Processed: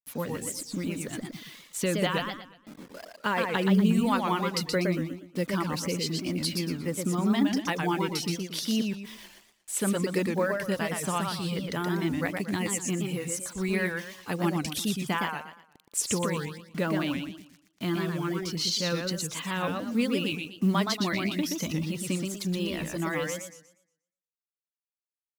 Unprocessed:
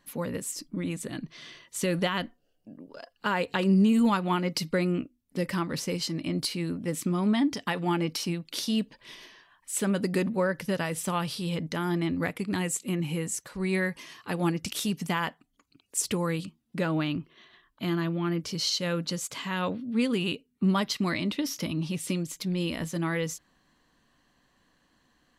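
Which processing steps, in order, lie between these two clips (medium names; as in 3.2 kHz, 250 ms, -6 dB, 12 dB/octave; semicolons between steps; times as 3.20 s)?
word length cut 8-bit, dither none; reverb removal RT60 0.96 s; modulated delay 119 ms, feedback 33%, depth 186 cents, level -4 dB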